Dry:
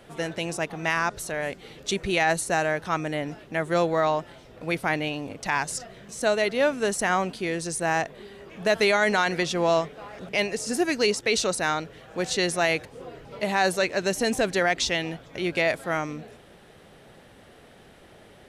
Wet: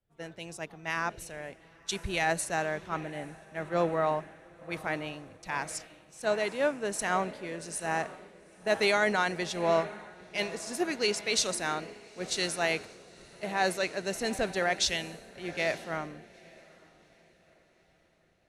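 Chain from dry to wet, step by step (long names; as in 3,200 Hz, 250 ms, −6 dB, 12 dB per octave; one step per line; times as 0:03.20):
feedback delay with all-pass diffusion 883 ms, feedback 64%, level −12 dB
multiband upward and downward expander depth 100%
level −7 dB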